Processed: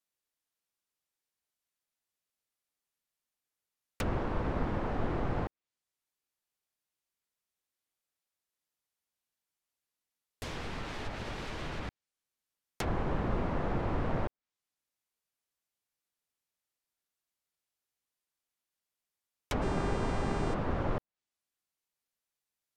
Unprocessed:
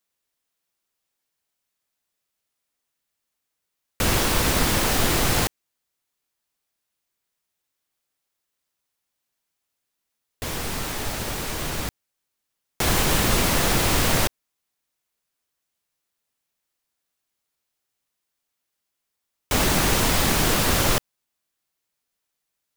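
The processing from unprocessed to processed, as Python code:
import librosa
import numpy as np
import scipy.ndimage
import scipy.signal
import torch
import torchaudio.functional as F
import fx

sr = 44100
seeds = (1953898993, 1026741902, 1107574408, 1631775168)

y = fx.env_lowpass_down(x, sr, base_hz=1100.0, full_db=-20.0)
y = fx.dmg_buzz(y, sr, base_hz=400.0, harmonics=23, level_db=-33.0, tilt_db=-6, odd_only=False, at=(19.61, 20.53), fade=0.02)
y = y * librosa.db_to_amplitude(-9.0)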